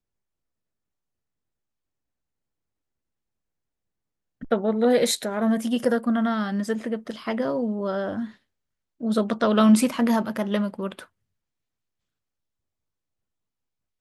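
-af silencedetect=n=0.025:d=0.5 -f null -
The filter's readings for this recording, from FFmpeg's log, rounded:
silence_start: 0.00
silence_end: 4.43 | silence_duration: 4.43
silence_start: 8.26
silence_end: 9.01 | silence_duration: 0.75
silence_start: 11.02
silence_end: 14.01 | silence_duration: 2.99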